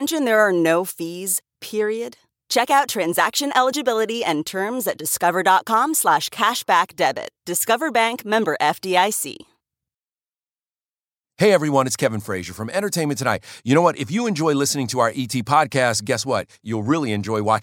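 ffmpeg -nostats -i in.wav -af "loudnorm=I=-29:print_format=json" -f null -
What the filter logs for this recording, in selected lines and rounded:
"input_i" : "-20.1",
"input_tp" : "-2.0",
"input_lra" : "3.3",
"input_thresh" : "-30.2",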